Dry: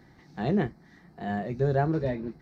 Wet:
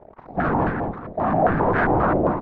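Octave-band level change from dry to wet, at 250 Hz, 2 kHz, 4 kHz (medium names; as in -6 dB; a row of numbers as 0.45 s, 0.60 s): +6.5 dB, +13.0 dB, no reading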